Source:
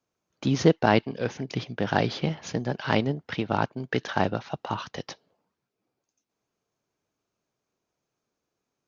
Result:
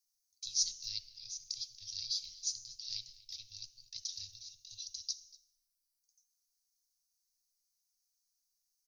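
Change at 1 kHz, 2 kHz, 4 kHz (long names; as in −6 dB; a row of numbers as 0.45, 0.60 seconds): below −40 dB, −34.5 dB, −1.5 dB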